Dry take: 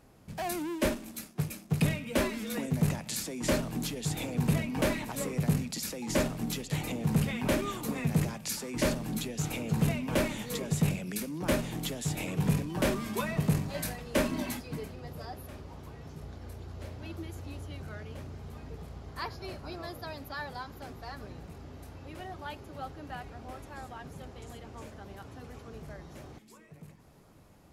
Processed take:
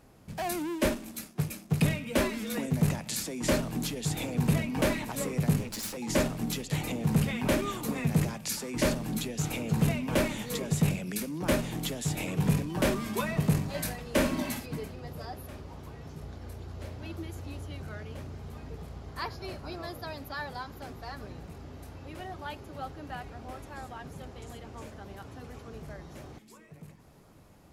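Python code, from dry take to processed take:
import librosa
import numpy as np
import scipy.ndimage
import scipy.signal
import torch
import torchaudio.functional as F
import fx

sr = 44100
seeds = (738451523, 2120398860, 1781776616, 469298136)

y = fx.lower_of_two(x, sr, delay_ms=9.5, at=(5.57, 5.97))
y = fx.room_flutter(y, sr, wall_m=10.2, rt60_s=0.4, at=(14.13, 14.66))
y = F.gain(torch.from_numpy(y), 1.5).numpy()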